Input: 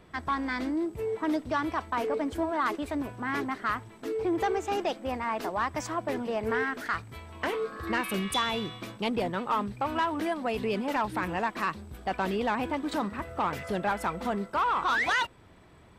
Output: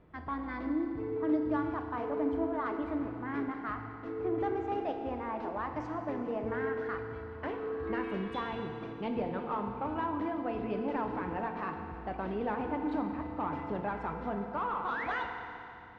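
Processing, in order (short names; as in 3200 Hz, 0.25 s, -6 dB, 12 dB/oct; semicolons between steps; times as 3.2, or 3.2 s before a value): tape spacing loss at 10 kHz 40 dB; FDN reverb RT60 2.8 s, high-frequency decay 0.95×, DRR 3.5 dB; gain -4 dB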